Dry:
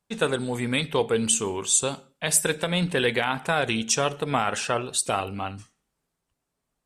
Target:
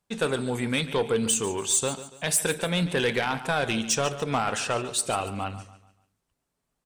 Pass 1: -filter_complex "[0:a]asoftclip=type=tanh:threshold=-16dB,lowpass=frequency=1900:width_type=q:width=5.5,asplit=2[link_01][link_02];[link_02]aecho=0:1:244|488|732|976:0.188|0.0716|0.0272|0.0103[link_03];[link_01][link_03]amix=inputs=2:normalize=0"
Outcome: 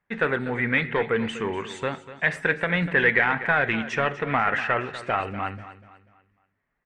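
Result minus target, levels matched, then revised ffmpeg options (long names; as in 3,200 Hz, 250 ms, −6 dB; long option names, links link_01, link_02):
echo 101 ms late; 2,000 Hz band +7.5 dB
-filter_complex "[0:a]asoftclip=type=tanh:threshold=-16dB,asplit=2[link_01][link_02];[link_02]aecho=0:1:143|286|429|572:0.188|0.0716|0.0272|0.0103[link_03];[link_01][link_03]amix=inputs=2:normalize=0"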